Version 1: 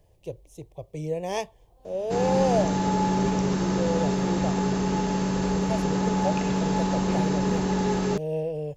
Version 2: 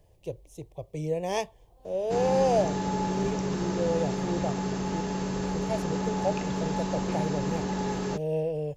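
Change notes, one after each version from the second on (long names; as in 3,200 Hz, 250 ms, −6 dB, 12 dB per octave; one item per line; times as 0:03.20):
background: send −11.5 dB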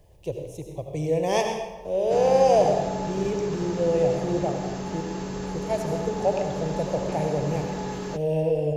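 speech: send on
background: send −11.0 dB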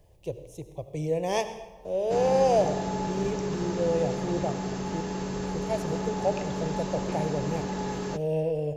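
speech: send −10.5 dB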